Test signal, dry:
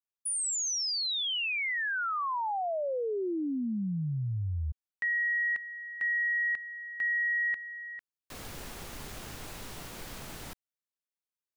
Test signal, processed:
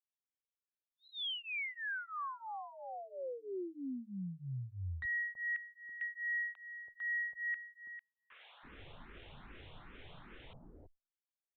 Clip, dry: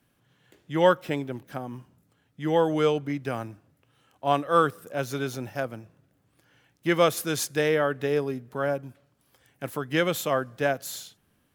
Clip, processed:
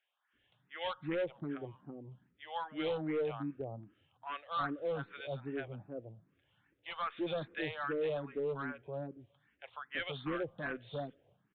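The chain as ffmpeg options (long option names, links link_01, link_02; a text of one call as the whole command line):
ffmpeg -i in.wav -filter_complex "[0:a]equalizer=frequency=190:width=0.89:gain=-2,acrossover=split=730[link_01][link_02];[link_01]adelay=330[link_03];[link_03][link_02]amix=inputs=2:normalize=0,aresample=8000,asoftclip=type=hard:threshold=-23.5dB,aresample=44100,asplit=2[link_04][link_05];[link_05]afreqshift=2.5[link_06];[link_04][link_06]amix=inputs=2:normalize=1,volume=-6dB" out.wav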